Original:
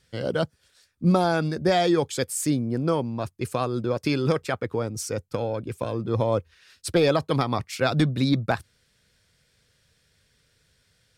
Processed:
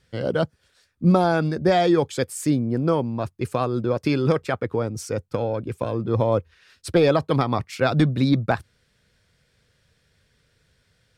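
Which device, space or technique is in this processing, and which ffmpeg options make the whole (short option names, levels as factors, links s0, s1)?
behind a face mask: -af "highshelf=f=3400:g=-8,volume=1.41"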